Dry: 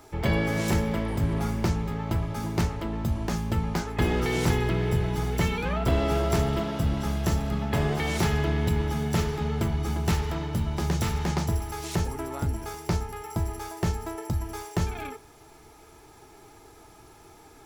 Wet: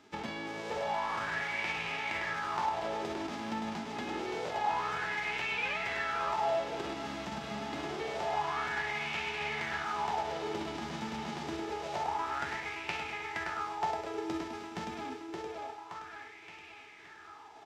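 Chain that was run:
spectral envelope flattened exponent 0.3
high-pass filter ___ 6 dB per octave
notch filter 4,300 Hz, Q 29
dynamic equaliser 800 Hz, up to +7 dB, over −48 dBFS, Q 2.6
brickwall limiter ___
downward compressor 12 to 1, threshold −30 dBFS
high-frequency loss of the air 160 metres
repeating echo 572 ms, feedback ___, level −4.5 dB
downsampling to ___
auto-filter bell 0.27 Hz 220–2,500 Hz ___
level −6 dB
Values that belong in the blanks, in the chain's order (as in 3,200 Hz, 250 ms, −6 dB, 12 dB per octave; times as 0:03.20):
170 Hz, −13 dBFS, 54%, 32,000 Hz, +15 dB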